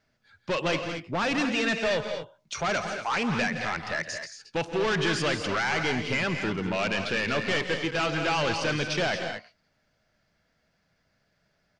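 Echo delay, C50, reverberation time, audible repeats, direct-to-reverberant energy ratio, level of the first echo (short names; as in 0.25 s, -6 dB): 0.128 s, none, none, 3, none, -18.0 dB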